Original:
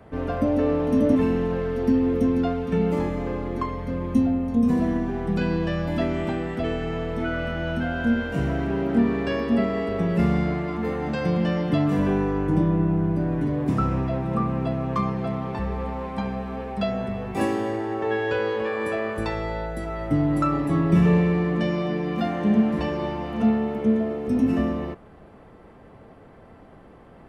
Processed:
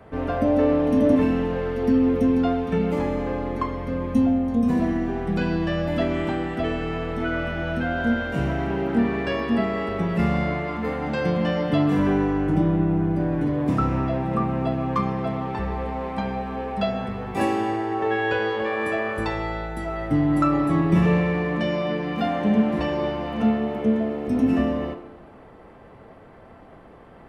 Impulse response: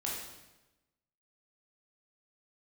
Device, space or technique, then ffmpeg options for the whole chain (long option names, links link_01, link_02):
filtered reverb send: -filter_complex "[0:a]asplit=2[link_01][link_02];[link_02]highpass=350,lowpass=4700[link_03];[1:a]atrim=start_sample=2205[link_04];[link_03][link_04]afir=irnorm=-1:irlink=0,volume=-7dB[link_05];[link_01][link_05]amix=inputs=2:normalize=0"